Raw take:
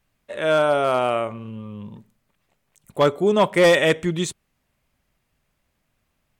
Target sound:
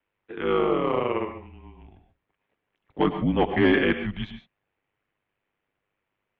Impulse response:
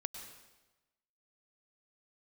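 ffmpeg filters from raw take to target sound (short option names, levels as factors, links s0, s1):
-filter_complex "[0:a]lowshelf=f=160:g=8,aeval=exprs='val(0)*sin(2*PI*50*n/s)':c=same[s0];[1:a]atrim=start_sample=2205,afade=t=out:st=0.2:d=0.01,atrim=end_sample=9261[s1];[s0][s1]afir=irnorm=-1:irlink=0,highpass=f=310:t=q:w=0.5412,highpass=f=310:t=q:w=1.307,lowpass=f=3400:t=q:w=0.5176,lowpass=f=3400:t=q:w=0.7071,lowpass=f=3400:t=q:w=1.932,afreqshift=-190"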